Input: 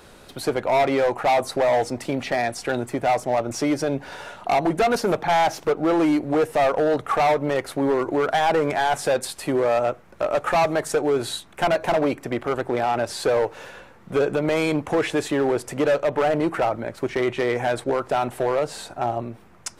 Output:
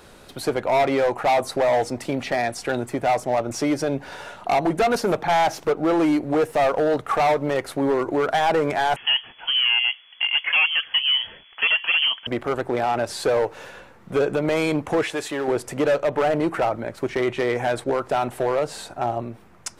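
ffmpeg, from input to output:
-filter_complex "[0:a]asettb=1/sr,asplit=3[a][b][c];[a]atrim=end=6.404[d];[b]atrim=start=6.4:end=7.57,asetpts=PTS-STARTPTS,afade=t=in:d=0.004:c=qsin,afade=t=out:st=1.166:d=0.004:c=qsin,aeval=exprs='sgn(val(0))*max(abs(val(0))-0.00168,0)':c=same[e];[c]atrim=start=7.566[f];[d][e]acrossfade=d=0.004:c1=hsin:c2=qsin[g];[g][f]acrossfade=d=0.004:c1=qsin:c2=hsin,asettb=1/sr,asplit=3[h][i][j];[h]atrim=end=8.964[k];[i]atrim=start=8.96:end=12.27,asetpts=PTS-STARTPTS,afade=t=in:d=0.004:c=qsin,afade=t=out:st=3.306:d=0.004:c=qsin,lowpass=f=2.9k:t=q:w=0.5098,lowpass=f=2.9k:t=q:w=0.6013,lowpass=f=2.9k:t=q:w=0.9,lowpass=f=2.9k:t=q:w=2.563,afreqshift=-3400[l];[j]atrim=start=12.266[m];[k][l]acrossfade=d=0.004:c1=hsin:c2=qsin[n];[n][m]acrossfade=d=0.004:c1=qsin:c2=hsin,asettb=1/sr,asplit=3[o][p][q];[o]atrim=end=15.034[r];[p]atrim=start=15.03:end=15.48,asetpts=PTS-STARTPTS,afade=t=in:d=0.004:c=qsin,afade=t=out:st=0.446:d=0.004:c=qsin,lowshelf=f=420:g=-10[s];[q]atrim=start=15.476[t];[r][s]acrossfade=d=0.004:c1=hsin:c2=qsin[u];[u][t]acrossfade=d=0.004:c1=qsin:c2=hsin"

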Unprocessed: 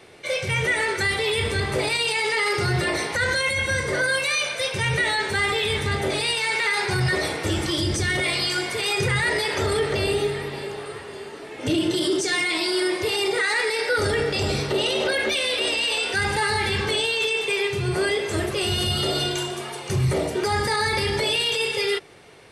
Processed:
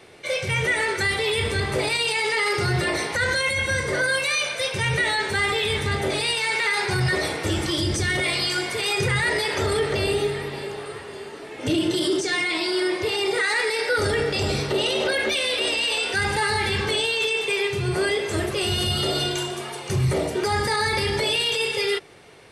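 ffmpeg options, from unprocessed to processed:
-filter_complex "[0:a]asettb=1/sr,asplit=3[a][b][c];[a]atrim=end=12.204[d];[b]atrim=start=12.2:end=13.28,asetpts=PTS-STARTPTS,afade=t=in:d=0.004:c=qsin,afade=t=out:st=1.076:d=0.004:c=qsin,highshelf=f=8.3k:g=-9.5[e];[c]atrim=start=13.276[f];[d][e]acrossfade=d=0.004:c1=hsin:c2=qsin[g];[g][f]acrossfade=d=0.004:c1=qsin:c2=hsin"

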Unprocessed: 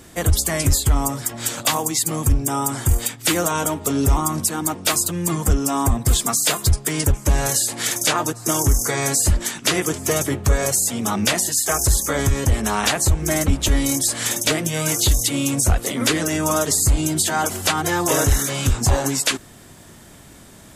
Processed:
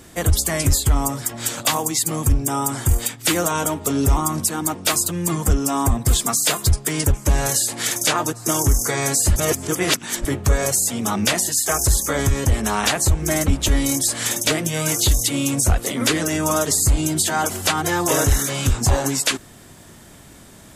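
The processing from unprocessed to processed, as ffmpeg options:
-filter_complex "[0:a]asplit=3[a][b][c];[a]atrim=end=9.362[d];[b]atrim=start=9.358:end=10.252,asetpts=PTS-STARTPTS,areverse[e];[c]atrim=start=10.248[f];[d][e]acrossfade=d=0.004:c1=hsin:c2=hsin[g];[g][f]acrossfade=d=0.004:c1=hsin:c2=hsin"

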